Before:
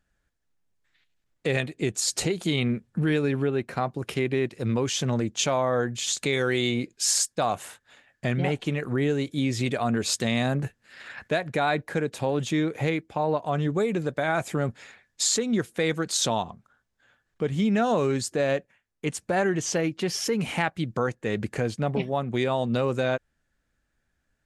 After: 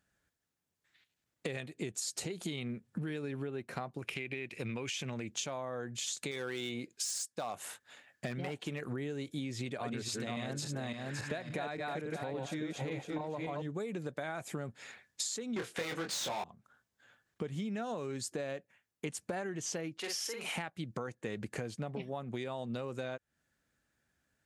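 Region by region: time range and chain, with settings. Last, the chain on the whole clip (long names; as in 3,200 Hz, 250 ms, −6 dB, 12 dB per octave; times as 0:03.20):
0:03.99–0:05.32: parametric band 2,400 Hz +14.5 dB 0.58 octaves + downward compressor 2 to 1, threshold −29 dBFS
0:06.31–0:08.81: low-shelf EQ 180 Hz −5.5 dB + hard clipping −19 dBFS
0:09.52–0:13.62: feedback delay that plays each chunk backwards 282 ms, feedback 43%, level −0.5 dB + high-shelf EQ 6,900 Hz −6 dB
0:15.56–0:16.44: high-shelf EQ 8,000 Hz −11 dB + mid-hump overdrive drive 26 dB, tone 4,400 Hz, clips at −13 dBFS + double-tracking delay 24 ms −4 dB
0:19.98–0:20.56: high-pass filter 610 Hz + double-tracking delay 47 ms −4 dB
whole clip: high-pass filter 86 Hz; high-shelf EQ 6,000 Hz +4.5 dB; downward compressor 12 to 1, threshold −33 dBFS; level −2 dB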